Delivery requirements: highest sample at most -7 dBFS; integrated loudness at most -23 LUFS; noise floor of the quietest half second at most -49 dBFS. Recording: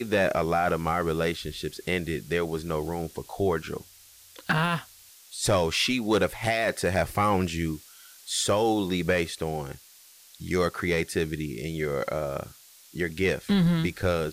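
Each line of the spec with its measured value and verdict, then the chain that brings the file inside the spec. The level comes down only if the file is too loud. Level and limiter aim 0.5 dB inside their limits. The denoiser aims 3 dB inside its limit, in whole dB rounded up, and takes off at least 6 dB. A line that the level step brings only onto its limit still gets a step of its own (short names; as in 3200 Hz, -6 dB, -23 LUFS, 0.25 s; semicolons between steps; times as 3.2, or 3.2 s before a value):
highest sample -15.0 dBFS: OK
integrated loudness -27.0 LUFS: OK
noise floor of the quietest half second -53 dBFS: OK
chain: none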